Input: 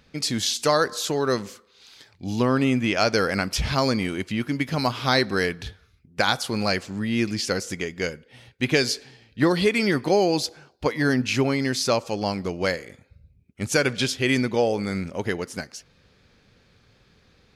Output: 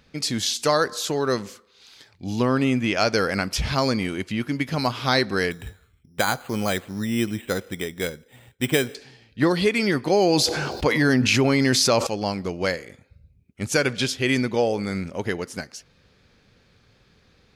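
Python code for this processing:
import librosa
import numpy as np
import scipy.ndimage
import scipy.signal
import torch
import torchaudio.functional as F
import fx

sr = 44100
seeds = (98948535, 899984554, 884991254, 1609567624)

y = fx.resample_bad(x, sr, factor=8, down='filtered', up='hold', at=(5.51, 8.95))
y = fx.env_flatten(y, sr, amount_pct=70, at=(10.13, 12.07))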